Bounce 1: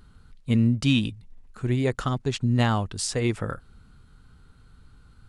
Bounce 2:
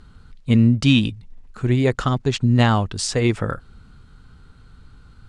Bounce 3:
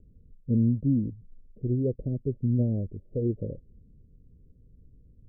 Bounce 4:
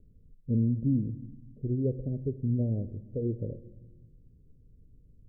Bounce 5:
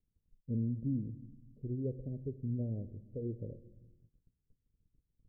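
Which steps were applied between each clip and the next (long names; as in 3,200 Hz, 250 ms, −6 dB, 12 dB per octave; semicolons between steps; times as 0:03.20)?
low-pass filter 7,700 Hz 12 dB per octave; level +6 dB
Butterworth low-pass 570 Hz 72 dB per octave; level −8.5 dB
rectangular room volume 540 cubic metres, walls mixed, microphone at 0.31 metres; level −3 dB
noise gate −52 dBFS, range −18 dB; level −8 dB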